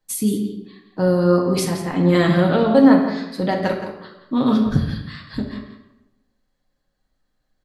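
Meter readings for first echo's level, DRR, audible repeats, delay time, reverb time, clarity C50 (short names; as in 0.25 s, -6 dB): -11.5 dB, -1.0 dB, 1, 0.17 s, 0.95 s, 5.0 dB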